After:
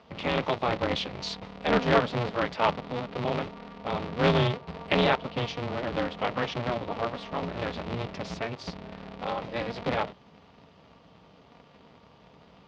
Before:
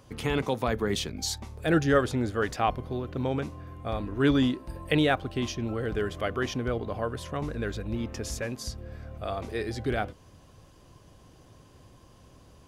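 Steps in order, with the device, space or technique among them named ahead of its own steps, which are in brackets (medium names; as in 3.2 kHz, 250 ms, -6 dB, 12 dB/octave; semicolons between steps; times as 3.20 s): ring modulator pedal into a guitar cabinet (polarity switched at an audio rate 120 Hz; cabinet simulation 100–4200 Hz, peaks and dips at 230 Hz -6 dB, 350 Hz -8 dB, 1.6 kHz -5 dB); trim +2.5 dB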